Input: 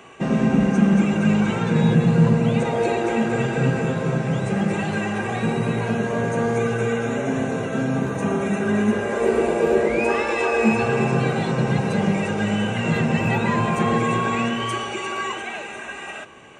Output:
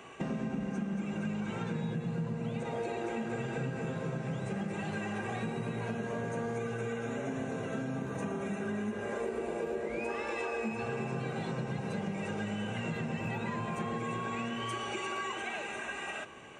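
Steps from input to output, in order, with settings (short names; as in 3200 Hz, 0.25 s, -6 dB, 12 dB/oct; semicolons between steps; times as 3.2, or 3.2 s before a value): compressor, threshold -28 dBFS, peak gain reduction 16 dB; gain -5 dB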